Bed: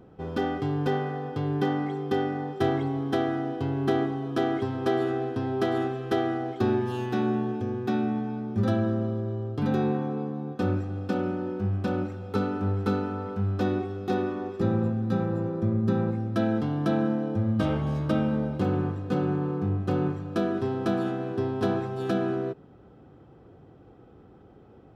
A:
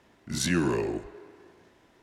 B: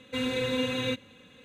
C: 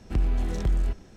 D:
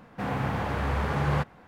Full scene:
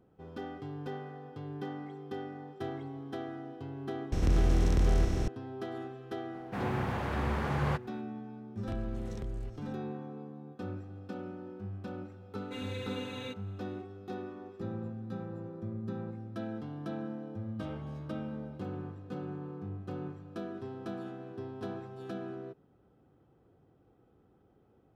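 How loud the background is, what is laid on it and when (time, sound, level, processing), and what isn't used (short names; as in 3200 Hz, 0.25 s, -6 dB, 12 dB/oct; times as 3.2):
bed -13.5 dB
4.12 add C -4.5 dB + per-bin compression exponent 0.2
6.34 add D -5 dB
8.57 add C -6.5 dB + compressor 2.5:1, threshold -33 dBFS
12.38 add B -12 dB
not used: A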